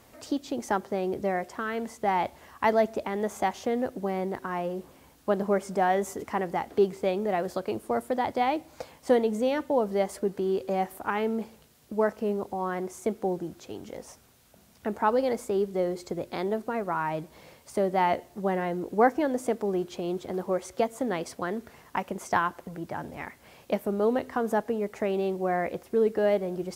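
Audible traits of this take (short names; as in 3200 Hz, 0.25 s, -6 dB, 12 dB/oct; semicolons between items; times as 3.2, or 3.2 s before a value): noise floor -58 dBFS; spectral tilt -2.5 dB/oct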